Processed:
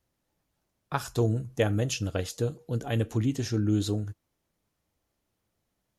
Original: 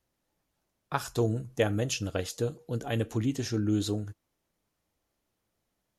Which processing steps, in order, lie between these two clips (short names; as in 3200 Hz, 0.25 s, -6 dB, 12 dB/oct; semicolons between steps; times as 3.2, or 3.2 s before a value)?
bell 91 Hz +4 dB 2.2 oct